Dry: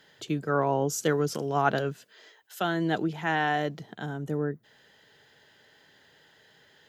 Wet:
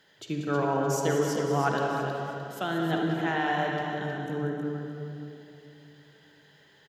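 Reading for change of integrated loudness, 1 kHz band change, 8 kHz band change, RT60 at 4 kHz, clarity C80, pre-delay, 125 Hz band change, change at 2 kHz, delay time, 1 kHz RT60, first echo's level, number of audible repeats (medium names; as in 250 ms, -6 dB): -0.5 dB, 0.0 dB, -1.0 dB, 2.2 s, 0.0 dB, 39 ms, +1.0 dB, -0.5 dB, 188 ms, 2.6 s, -9.5 dB, 3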